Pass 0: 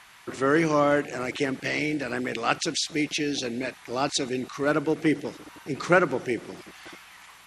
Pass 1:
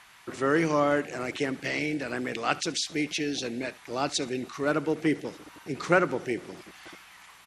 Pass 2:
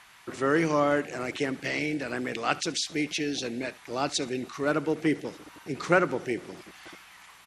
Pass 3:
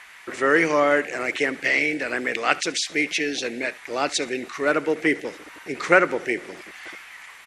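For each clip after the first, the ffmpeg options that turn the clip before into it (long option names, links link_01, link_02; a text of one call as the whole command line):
ffmpeg -i in.wav -af "aecho=1:1:72:0.0841,volume=-2.5dB" out.wav
ffmpeg -i in.wav -af anull out.wav
ffmpeg -i in.wav -af "equalizer=frequency=125:width_type=o:width=1:gain=-8,equalizer=frequency=500:width_type=o:width=1:gain=5,equalizer=frequency=2000:width_type=o:width=1:gain=11,equalizer=frequency=8000:width_type=o:width=1:gain=4,volume=1dB" out.wav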